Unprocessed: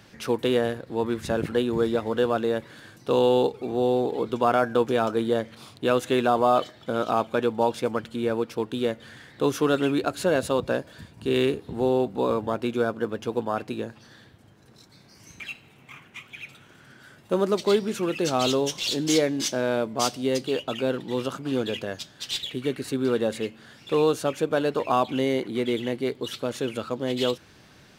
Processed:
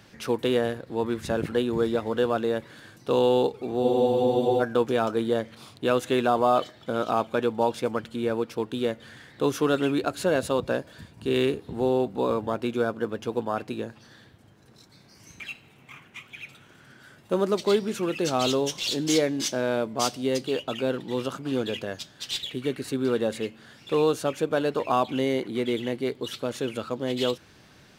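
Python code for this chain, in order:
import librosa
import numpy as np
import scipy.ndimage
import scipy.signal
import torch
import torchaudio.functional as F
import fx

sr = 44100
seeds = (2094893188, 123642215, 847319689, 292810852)

y = fx.spec_freeze(x, sr, seeds[0], at_s=3.85, hold_s=0.77)
y = y * 10.0 ** (-1.0 / 20.0)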